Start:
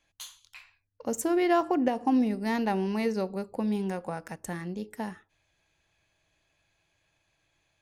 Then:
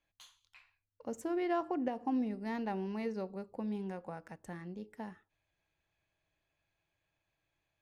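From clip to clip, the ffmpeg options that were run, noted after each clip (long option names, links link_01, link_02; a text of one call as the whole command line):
ffmpeg -i in.wav -af "lowpass=frequency=2900:poles=1,volume=-9dB" out.wav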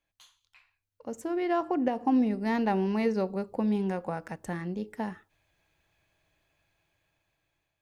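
ffmpeg -i in.wav -af "dynaudnorm=framelen=690:gausssize=5:maxgain=10.5dB" out.wav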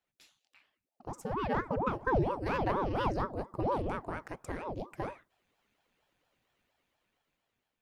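ffmpeg -i in.wav -af "aeval=exprs='val(0)*sin(2*PI*440*n/s+440*0.8/4.3*sin(2*PI*4.3*n/s))':channel_layout=same,volume=-1.5dB" out.wav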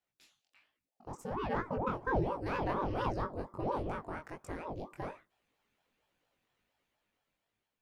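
ffmpeg -i in.wav -af "flanger=delay=17.5:depth=5:speed=1.3" out.wav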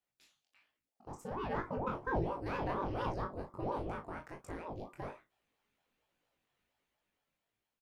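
ffmpeg -i in.wav -filter_complex "[0:a]asplit=2[link_01][link_02];[link_02]adelay=36,volume=-9.5dB[link_03];[link_01][link_03]amix=inputs=2:normalize=0,volume=-3dB" out.wav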